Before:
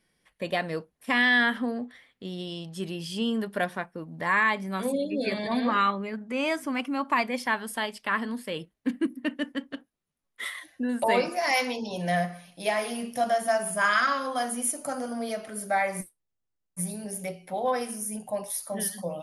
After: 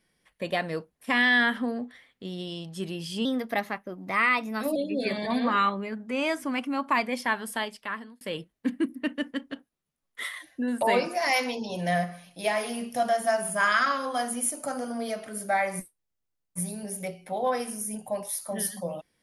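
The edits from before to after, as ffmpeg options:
-filter_complex "[0:a]asplit=4[a][b][c][d];[a]atrim=end=3.254[e];[b]atrim=start=3.25:end=4.97,asetpts=PTS-STARTPTS,asetrate=50274,aresample=44100[f];[c]atrim=start=4.966:end=8.42,asetpts=PTS-STARTPTS,afade=t=out:st=2.824:d=0.63[g];[d]atrim=start=8.42,asetpts=PTS-STARTPTS,afade=t=in:d=0.004:c=hsin[h];[e][f]acrossfade=d=0.004:c1=hsin:c2=hsin[i];[g][h]concat=n=2:v=0:a=1[j];[i][j]acrossfade=d=0.004:c1=hsin:c2=hsin"

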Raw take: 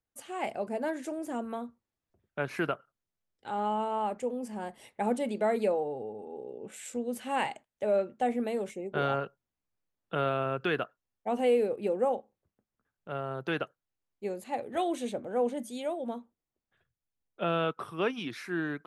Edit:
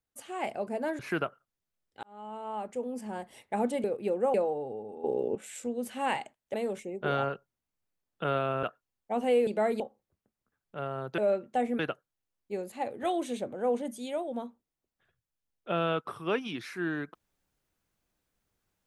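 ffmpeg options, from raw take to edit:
-filter_complex "[0:a]asplit=13[a][b][c][d][e][f][g][h][i][j][k][l][m];[a]atrim=end=0.992[n];[b]atrim=start=2.458:end=3.5,asetpts=PTS-STARTPTS,afade=t=out:st=1.038:d=0.004:c=hsin[o];[c]atrim=start=3.5:end=5.312,asetpts=PTS-STARTPTS,afade=t=in:d=0.95[p];[d]atrim=start=11.628:end=12.132[q];[e]atrim=start=5.638:end=6.342[r];[f]atrim=start=6.338:end=6.652,asetpts=PTS-STARTPTS,volume=12dB[s];[g]atrim=start=6.648:end=7.842[t];[h]atrim=start=8.448:end=10.542[u];[i]atrim=start=10.788:end=11.632[v];[j]atrim=start=5.308:end=5.642[w];[k]atrim=start=12.128:end=13.512[x];[l]atrim=start=7.838:end=8.452[y];[m]atrim=start=13.508[z];[o][p]concat=n=2:v=0:a=1[aa];[n][aa]acrossfade=d=0.004:c1=hsin:c2=hsin[ab];[ab][q]acrossfade=d=0.004:c1=hsin:c2=hsin[ac];[ac][r]acrossfade=d=0.004:c1=hsin:c2=hsin[ad];[ad][s]acrossfade=d=0.004:c1=hsin:c2=hsin[ae];[ae][t]acrossfade=d=0.004:c1=hsin:c2=hsin[af];[af][u]acrossfade=d=0.004:c1=hsin:c2=hsin[ag];[ag][v]acrossfade=d=0.004:c1=hsin:c2=hsin[ah];[ah][w]acrossfade=d=0.004:c1=hsin:c2=hsin[ai];[ai][x]acrossfade=d=0.004:c1=hsin:c2=hsin[aj];[aj][y]acrossfade=d=0.004:c1=hsin:c2=hsin[ak];[ak][z]acrossfade=d=0.004:c1=hsin:c2=hsin"

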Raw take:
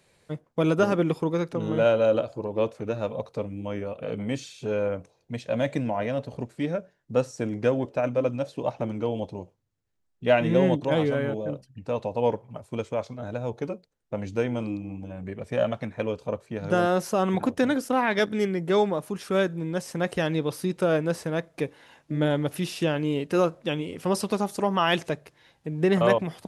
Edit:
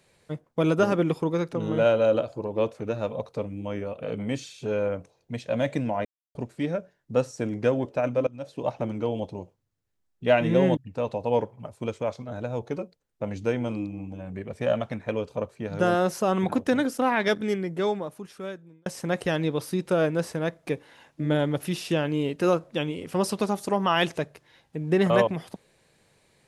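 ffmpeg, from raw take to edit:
-filter_complex "[0:a]asplit=6[a][b][c][d][e][f];[a]atrim=end=6.05,asetpts=PTS-STARTPTS,afade=t=out:st=6.046:d=0.004:c=hsin[g];[b]atrim=start=6.05:end=6.35,asetpts=PTS-STARTPTS,volume=0[h];[c]atrim=start=6.35:end=8.27,asetpts=PTS-STARTPTS,afade=t=in:d=0.004:c=hsin,afade=t=out:st=1.916:d=0.004:c=hsin:silence=0.0944061[i];[d]atrim=start=8.27:end=10.772,asetpts=PTS-STARTPTS,afade=t=in:d=0.39:silence=0.0944061[j];[e]atrim=start=11.678:end=19.77,asetpts=PTS-STARTPTS,afade=t=out:st=6.502:d=1.59[k];[f]atrim=start=19.77,asetpts=PTS-STARTPTS,afade=t=in:d=0.004:c=hsin[l];[g][h][i][j]concat=n=4:v=0:a=1[m];[k][l]concat=n=2:v=0:a=1[n];[m][n]acrossfade=d=0.004:c1=hsin:c2=hsin"

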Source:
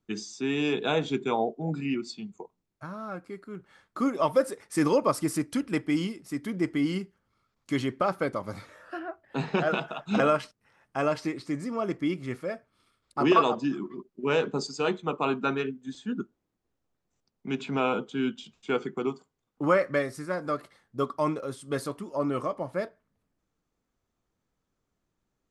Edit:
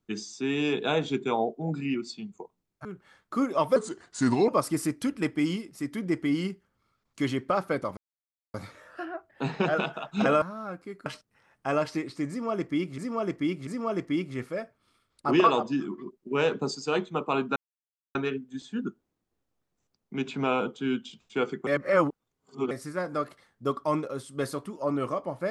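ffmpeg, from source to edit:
-filter_complex "[0:a]asplit=12[a][b][c][d][e][f][g][h][i][j][k][l];[a]atrim=end=2.852[m];[b]atrim=start=3.488:end=4.404[n];[c]atrim=start=4.4:end=4.99,asetpts=PTS-STARTPTS,asetrate=36162,aresample=44100,atrim=end_sample=31730,asetpts=PTS-STARTPTS[o];[d]atrim=start=4.986:end=8.48,asetpts=PTS-STARTPTS,afade=t=out:st=3.49:d=0.004:c=hsin,apad=pad_dur=0.57[p];[e]atrim=start=8.48:end=10.362,asetpts=PTS-STARTPTS,afade=t=in:d=0.004:c=hsin[q];[f]atrim=start=2.848:end=3.492[r];[g]atrim=start=10.358:end=12.282[s];[h]atrim=start=11.588:end=12.282[t];[i]atrim=start=11.588:end=15.48,asetpts=PTS-STARTPTS,afade=t=out:st=3.888:d=0.004:c=hsin,apad=pad_dur=0.59[u];[j]atrim=start=15.48:end=19.002,asetpts=PTS-STARTPTS,afade=t=in:d=0.004:c=hsin[v];[k]atrim=start=18.998:end=20.042,asetpts=PTS-STARTPTS,areverse[w];[l]atrim=start=20.038[x];[m][n]acrossfade=d=0.004:c1=hsin:c2=hsin[y];[y][o]acrossfade=d=0.004:c1=hsin:c2=hsin[z];[p][q]concat=n=2:v=0:a=1[aa];[z][aa]acrossfade=d=0.004:c1=hsin:c2=hsin[ab];[ab][r]acrossfade=d=0.004:c1=hsin:c2=hsin[ac];[ac][s]acrossfade=d=0.004:c1=hsin:c2=hsin[ad];[ad][t]acrossfade=d=0.004:c1=hsin:c2=hsin[ae];[u][v]concat=n=2:v=0:a=1[af];[ae][af]acrossfade=d=0.004:c1=hsin:c2=hsin[ag];[ag][w]acrossfade=d=0.004:c1=hsin:c2=hsin[ah];[ah][x]acrossfade=d=0.004:c1=hsin:c2=hsin"

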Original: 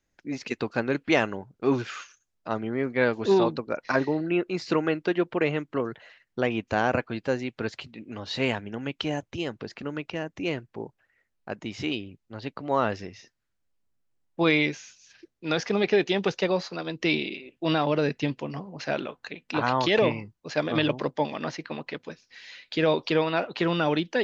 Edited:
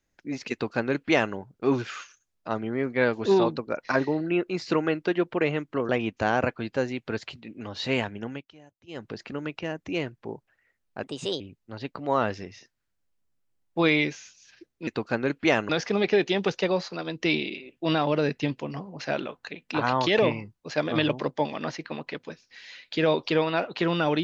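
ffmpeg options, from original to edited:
-filter_complex "[0:a]asplit=8[a][b][c][d][e][f][g][h];[a]atrim=end=5.892[i];[b]atrim=start=6.398:end=8.97,asetpts=PTS-STARTPTS,afade=t=out:st=2.392:d=0.18:silence=0.0749894[j];[c]atrim=start=8.97:end=9.38,asetpts=PTS-STARTPTS,volume=-22.5dB[k];[d]atrim=start=9.38:end=11.544,asetpts=PTS-STARTPTS,afade=t=in:d=0.18:silence=0.0749894[l];[e]atrim=start=11.54:end=12.02,asetpts=PTS-STARTPTS,asetrate=56889,aresample=44100,atrim=end_sample=16409,asetpts=PTS-STARTPTS[m];[f]atrim=start=12.016:end=15.492[n];[g]atrim=start=0.518:end=1.342[o];[h]atrim=start=15.488[p];[j][k][l]concat=n=3:v=0:a=1[q];[i][q]acrossfade=d=0.004:c1=hsin:c2=hsin[r];[r][m]acrossfade=d=0.004:c1=hsin:c2=hsin[s];[s][n]acrossfade=d=0.004:c1=hsin:c2=hsin[t];[t][o]acrossfade=d=0.004:c1=hsin:c2=hsin[u];[u][p]acrossfade=d=0.004:c1=hsin:c2=hsin"

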